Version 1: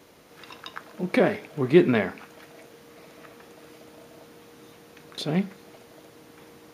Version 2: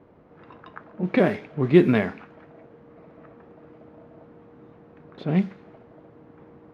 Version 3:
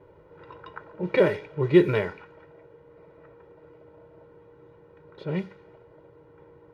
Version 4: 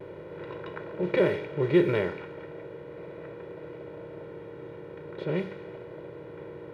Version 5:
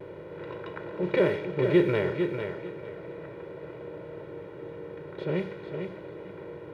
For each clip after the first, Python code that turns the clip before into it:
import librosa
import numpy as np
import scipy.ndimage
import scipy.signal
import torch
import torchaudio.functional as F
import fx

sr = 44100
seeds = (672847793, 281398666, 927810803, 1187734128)

y1 = fx.env_lowpass(x, sr, base_hz=1100.0, full_db=-16.0)
y1 = fx.bass_treble(y1, sr, bass_db=5, treble_db=-3)
y2 = y1 + 0.94 * np.pad(y1, (int(2.1 * sr / 1000.0), 0))[:len(y1)]
y2 = fx.rider(y2, sr, range_db=10, speed_s=2.0)
y2 = F.gain(torch.from_numpy(y2), -1.0).numpy()
y3 = fx.bin_compress(y2, sr, power=0.6)
y3 = fx.vibrato(y3, sr, rate_hz=0.38, depth_cents=16.0)
y3 = F.gain(torch.from_numpy(y3), -5.5).numpy()
y4 = fx.echo_feedback(y3, sr, ms=450, feedback_pct=24, wet_db=-7)